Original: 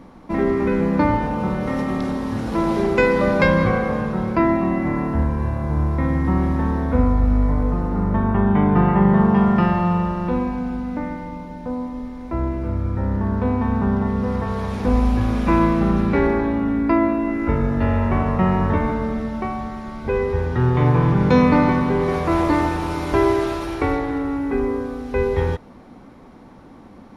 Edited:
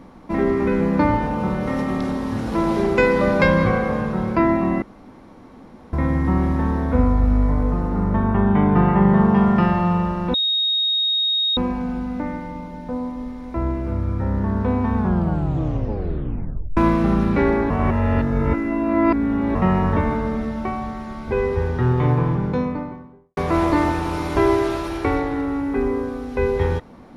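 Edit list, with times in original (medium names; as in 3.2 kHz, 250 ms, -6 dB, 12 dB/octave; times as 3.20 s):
4.82–5.93 s: room tone
10.34 s: add tone 3.74 kHz -17 dBFS 1.23 s
13.73 s: tape stop 1.81 s
16.47–18.32 s: reverse
20.38–22.14 s: studio fade out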